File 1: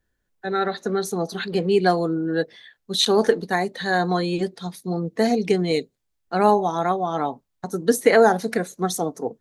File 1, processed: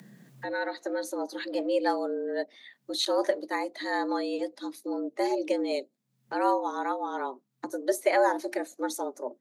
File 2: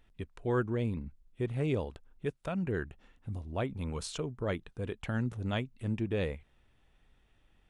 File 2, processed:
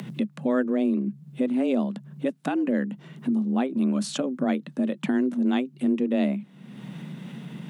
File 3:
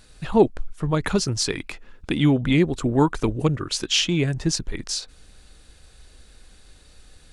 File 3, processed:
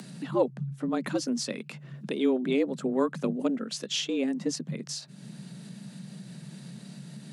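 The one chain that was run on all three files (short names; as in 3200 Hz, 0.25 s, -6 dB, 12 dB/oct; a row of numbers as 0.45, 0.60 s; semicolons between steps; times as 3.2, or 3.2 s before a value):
bell 82 Hz +12.5 dB 1.3 oct; upward compressor, threshold -22 dBFS; frequency shift +130 Hz; normalise peaks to -12 dBFS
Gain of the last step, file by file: -9.0, +2.5, -10.0 dB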